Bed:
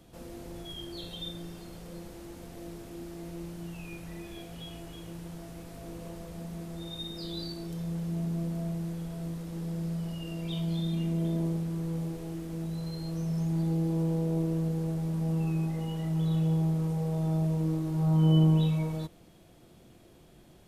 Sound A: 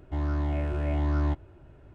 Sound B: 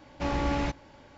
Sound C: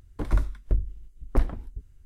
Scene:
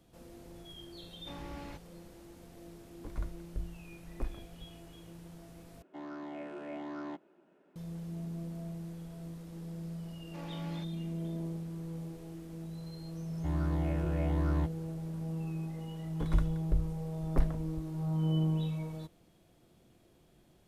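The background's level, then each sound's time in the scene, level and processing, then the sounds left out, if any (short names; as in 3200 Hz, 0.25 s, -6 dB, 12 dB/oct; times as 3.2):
bed -8 dB
1.06 add B -17 dB
2.85 add C -14.5 dB
5.82 replace with A -7.5 dB + elliptic high-pass 180 Hz
10.13 add B -17.5 dB + HPF 240 Hz
13.32 add A -5 dB
16.01 add C -6 dB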